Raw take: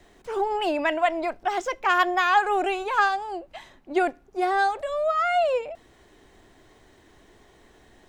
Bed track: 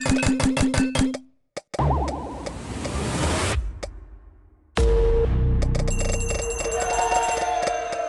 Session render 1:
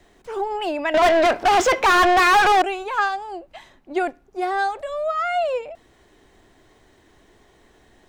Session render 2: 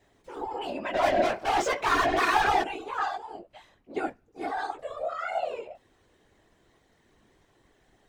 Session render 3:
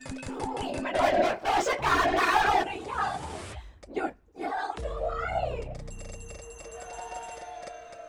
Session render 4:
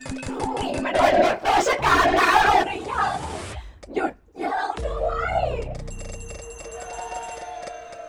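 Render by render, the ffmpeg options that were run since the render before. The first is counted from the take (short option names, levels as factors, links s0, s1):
-filter_complex "[0:a]asettb=1/sr,asplit=3[s0][s1][s2];[s0]atrim=end=0.944[s3];[s1]atrim=start=0.94:end=2.62,asetpts=PTS-STARTPTS,afade=t=in:d=0.004:c=qsin,afade=t=out:st=1.676:d=0.004:c=qsin,asplit=2[s4][s5];[s5]highpass=f=720:p=1,volume=44.7,asoftclip=type=tanh:threshold=0.376[s6];[s4][s6]amix=inputs=2:normalize=0,lowpass=f=2800:p=1,volume=0.501[s7];[s2]atrim=start=2.616[s8];[s3][s7]acrossfade=d=0.004:c1=hsin:c2=qsin[s9];[s9][s8]acrossfade=d=0.004:c1=qsin:c2=hsin"
-af "flanger=delay=16.5:depth=3.2:speed=1.1,afftfilt=real='hypot(re,im)*cos(2*PI*random(0))':imag='hypot(re,im)*sin(2*PI*random(1))':win_size=512:overlap=0.75"
-filter_complex "[1:a]volume=0.133[s0];[0:a][s0]amix=inputs=2:normalize=0"
-af "volume=2.11"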